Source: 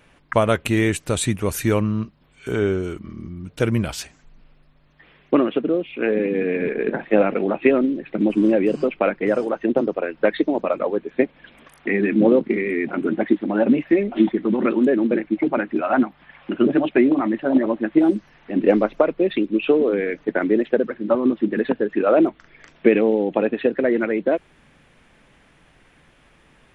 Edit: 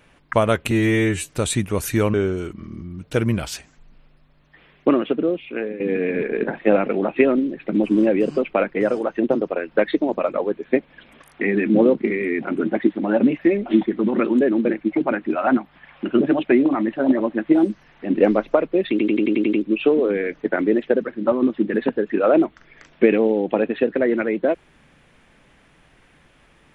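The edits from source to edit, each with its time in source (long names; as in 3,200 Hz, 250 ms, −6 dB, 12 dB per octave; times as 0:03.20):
0:00.71–0:01.00: time-stretch 2×
0:01.85–0:02.60: remove
0:05.82–0:06.26: fade out, to −14.5 dB
0:19.36: stutter 0.09 s, 8 plays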